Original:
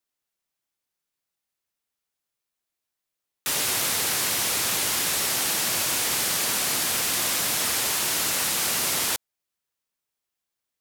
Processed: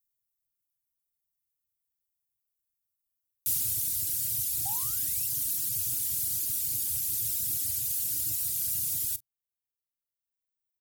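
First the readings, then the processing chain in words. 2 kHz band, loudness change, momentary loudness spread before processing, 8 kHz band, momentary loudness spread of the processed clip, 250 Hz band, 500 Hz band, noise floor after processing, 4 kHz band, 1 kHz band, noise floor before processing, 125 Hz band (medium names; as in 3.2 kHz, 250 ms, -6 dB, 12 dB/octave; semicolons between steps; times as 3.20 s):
-26.0 dB, -5.0 dB, 1 LU, -7.0 dB, 0 LU, -16.5 dB, under -25 dB, under -85 dBFS, -16.5 dB, -20.5 dB, -85 dBFS, -3.5 dB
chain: Chebyshev band-stop 310–1500 Hz, order 4; painted sound rise, 4.65–5.27 s, 750–2900 Hz -37 dBFS; in parallel at -4 dB: saturation -29.5 dBFS, distortion -9 dB; on the sum: FFT filter 120 Hz 0 dB, 200 Hz -19 dB, 710 Hz -3 dB, 1.7 kHz -29 dB, 16 kHz +4 dB; on a send: early reflections 34 ms -12 dB, 44 ms -14.5 dB; on the sum: reverb removal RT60 1.7 s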